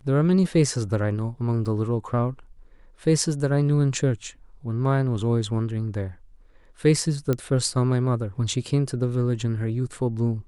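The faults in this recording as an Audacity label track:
1.650000	1.650000	drop-out 3.9 ms
7.330000	7.330000	click −12 dBFS

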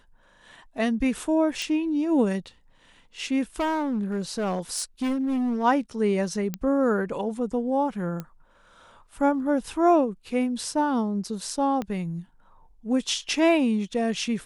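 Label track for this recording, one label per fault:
1.620000	1.620000	click −17 dBFS
3.600000	5.640000	clipping −22.5 dBFS
6.540000	6.540000	click −15 dBFS
8.200000	8.200000	click −20 dBFS
11.820000	11.820000	click −18 dBFS

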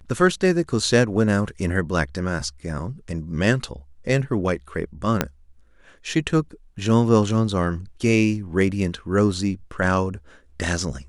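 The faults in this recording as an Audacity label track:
5.210000	5.210000	click −4 dBFS

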